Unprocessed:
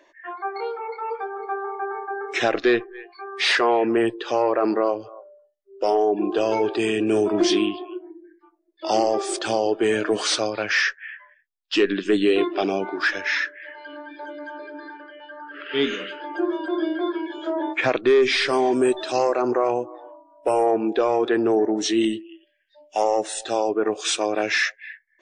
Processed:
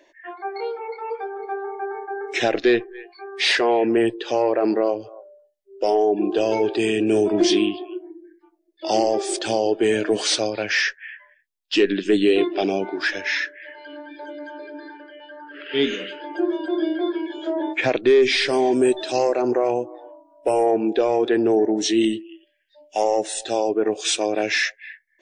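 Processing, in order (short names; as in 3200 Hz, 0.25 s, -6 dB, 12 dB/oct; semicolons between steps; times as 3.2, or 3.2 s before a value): bell 1200 Hz -11 dB 0.63 oct; gain +2 dB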